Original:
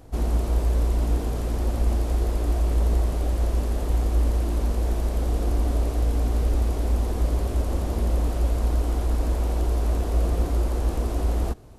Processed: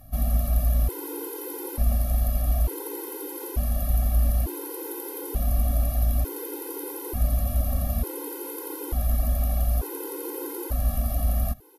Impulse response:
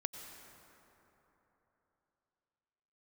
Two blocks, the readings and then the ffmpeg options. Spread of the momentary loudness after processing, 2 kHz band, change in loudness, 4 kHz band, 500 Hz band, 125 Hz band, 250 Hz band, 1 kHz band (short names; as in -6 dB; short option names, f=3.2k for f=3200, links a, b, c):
9 LU, -3.5 dB, -2.5 dB, -3.5 dB, -3.5 dB, -3.0 dB, -4.0 dB, -3.0 dB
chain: -af "aexciter=amount=13.1:drive=5.6:freq=11k,aresample=32000,aresample=44100,afftfilt=real='re*gt(sin(2*PI*0.56*pts/sr)*(1-2*mod(floor(b*sr/1024/270),2)),0)':imag='im*gt(sin(2*PI*0.56*pts/sr)*(1-2*mod(floor(b*sr/1024/270),2)),0)':win_size=1024:overlap=0.75"